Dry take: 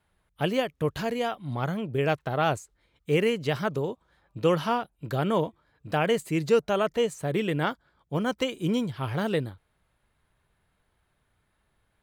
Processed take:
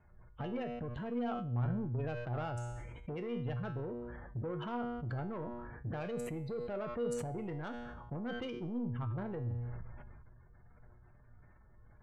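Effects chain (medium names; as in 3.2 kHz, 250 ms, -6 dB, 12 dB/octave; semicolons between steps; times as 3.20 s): local Wiener filter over 9 samples; spectral gate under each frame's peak -20 dB strong; bass shelf 140 Hz +11 dB; in parallel at +3 dB: peak limiter -22 dBFS, peak gain reduction 11.5 dB; on the sum: compression 6:1, threshold -32 dBFS, peak gain reduction 18 dB; saturation -30.5 dBFS, distortion -15 dB; feedback comb 120 Hz, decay 0.67 s, harmonics all, mix 80%; decay stretcher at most 27 dB/s; trim +7 dB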